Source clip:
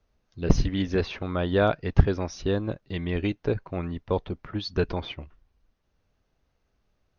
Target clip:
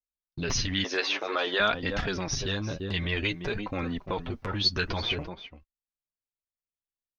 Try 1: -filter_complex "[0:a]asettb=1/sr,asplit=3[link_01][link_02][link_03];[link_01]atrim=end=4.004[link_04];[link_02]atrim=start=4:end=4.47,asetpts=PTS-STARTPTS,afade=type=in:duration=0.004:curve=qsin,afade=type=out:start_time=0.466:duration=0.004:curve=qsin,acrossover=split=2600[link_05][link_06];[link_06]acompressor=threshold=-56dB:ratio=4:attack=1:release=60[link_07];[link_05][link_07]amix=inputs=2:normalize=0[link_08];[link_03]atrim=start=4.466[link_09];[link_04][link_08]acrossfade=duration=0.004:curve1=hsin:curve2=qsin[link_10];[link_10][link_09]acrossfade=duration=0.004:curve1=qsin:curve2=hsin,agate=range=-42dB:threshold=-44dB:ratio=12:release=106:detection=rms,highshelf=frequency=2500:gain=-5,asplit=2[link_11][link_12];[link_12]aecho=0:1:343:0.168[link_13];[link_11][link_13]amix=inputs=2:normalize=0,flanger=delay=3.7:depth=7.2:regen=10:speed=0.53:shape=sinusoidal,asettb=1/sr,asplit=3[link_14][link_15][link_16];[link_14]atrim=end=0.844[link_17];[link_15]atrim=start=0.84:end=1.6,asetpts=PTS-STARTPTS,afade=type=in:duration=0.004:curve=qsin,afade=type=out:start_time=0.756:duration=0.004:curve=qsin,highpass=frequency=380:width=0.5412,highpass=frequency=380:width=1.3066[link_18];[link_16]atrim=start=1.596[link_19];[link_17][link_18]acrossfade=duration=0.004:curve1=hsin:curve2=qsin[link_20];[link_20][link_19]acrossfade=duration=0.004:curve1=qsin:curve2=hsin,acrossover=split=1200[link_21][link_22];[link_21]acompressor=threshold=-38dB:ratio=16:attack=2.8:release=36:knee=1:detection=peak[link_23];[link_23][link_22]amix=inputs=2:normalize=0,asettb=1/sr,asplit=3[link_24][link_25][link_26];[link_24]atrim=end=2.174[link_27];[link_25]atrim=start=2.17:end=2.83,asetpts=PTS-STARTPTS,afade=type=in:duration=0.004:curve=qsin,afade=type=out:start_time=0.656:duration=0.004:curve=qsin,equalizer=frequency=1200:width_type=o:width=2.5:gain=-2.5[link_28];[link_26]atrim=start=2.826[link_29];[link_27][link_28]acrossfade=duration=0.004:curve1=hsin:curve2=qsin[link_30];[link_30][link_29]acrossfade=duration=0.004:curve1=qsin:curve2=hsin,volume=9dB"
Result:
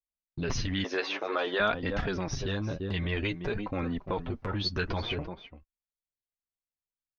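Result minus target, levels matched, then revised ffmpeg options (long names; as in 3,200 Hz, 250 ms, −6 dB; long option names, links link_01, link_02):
4,000 Hz band −4.0 dB
-filter_complex "[0:a]asettb=1/sr,asplit=3[link_01][link_02][link_03];[link_01]atrim=end=4.004[link_04];[link_02]atrim=start=4:end=4.47,asetpts=PTS-STARTPTS,afade=type=in:duration=0.004:curve=qsin,afade=type=out:start_time=0.466:duration=0.004:curve=qsin,acrossover=split=2600[link_05][link_06];[link_06]acompressor=threshold=-56dB:ratio=4:attack=1:release=60[link_07];[link_05][link_07]amix=inputs=2:normalize=0[link_08];[link_03]atrim=start=4.466[link_09];[link_04][link_08]acrossfade=duration=0.004:curve1=hsin:curve2=qsin[link_10];[link_10][link_09]acrossfade=duration=0.004:curve1=qsin:curve2=hsin,agate=range=-42dB:threshold=-44dB:ratio=12:release=106:detection=rms,highshelf=frequency=2500:gain=5,asplit=2[link_11][link_12];[link_12]aecho=0:1:343:0.168[link_13];[link_11][link_13]amix=inputs=2:normalize=0,flanger=delay=3.7:depth=7.2:regen=10:speed=0.53:shape=sinusoidal,asettb=1/sr,asplit=3[link_14][link_15][link_16];[link_14]atrim=end=0.844[link_17];[link_15]atrim=start=0.84:end=1.6,asetpts=PTS-STARTPTS,afade=type=in:duration=0.004:curve=qsin,afade=type=out:start_time=0.756:duration=0.004:curve=qsin,highpass=frequency=380:width=0.5412,highpass=frequency=380:width=1.3066[link_18];[link_16]atrim=start=1.596[link_19];[link_17][link_18]acrossfade=duration=0.004:curve1=hsin:curve2=qsin[link_20];[link_20][link_19]acrossfade=duration=0.004:curve1=qsin:curve2=hsin,acrossover=split=1200[link_21][link_22];[link_21]acompressor=threshold=-38dB:ratio=16:attack=2.8:release=36:knee=1:detection=peak[link_23];[link_23][link_22]amix=inputs=2:normalize=0,asettb=1/sr,asplit=3[link_24][link_25][link_26];[link_24]atrim=end=2.174[link_27];[link_25]atrim=start=2.17:end=2.83,asetpts=PTS-STARTPTS,afade=type=in:duration=0.004:curve=qsin,afade=type=out:start_time=0.656:duration=0.004:curve=qsin,equalizer=frequency=1200:width_type=o:width=2.5:gain=-2.5[link_28];[link_26]atrim=start=2.826[link_29];[link_27][link_28]acrossfade=duration=0.004:curve1=hsin:curve2=qsin[link_30];[link_30][link_29]acrossfade=duration=0.004:curve1=qsin:curve2=hsin,volume=9dB"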